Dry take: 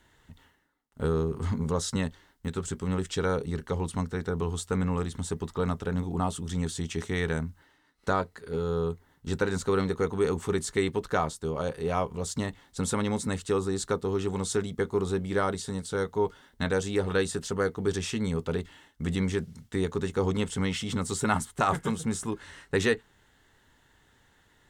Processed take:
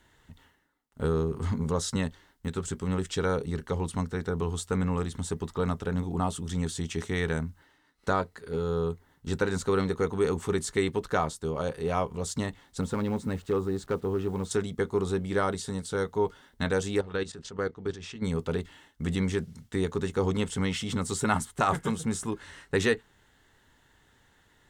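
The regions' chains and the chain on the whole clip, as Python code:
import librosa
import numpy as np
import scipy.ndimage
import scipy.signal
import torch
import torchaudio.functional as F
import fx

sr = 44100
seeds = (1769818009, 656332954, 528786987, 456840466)

y = fx.chain(x, sr, fx.lowpass(hz=1400.0, slope=6),
    fx.clip_hard(threshold_db=-20.5),
    fx.quant_dither(seeds[0], bits=10, dither='none'), at=(12.81, 14.51))
y = fx.chain(y, sr, fx.lowpass(hz=5400.0, slope=12),
    fx.level_steps(step_db=14), at=(17.01, 18.23))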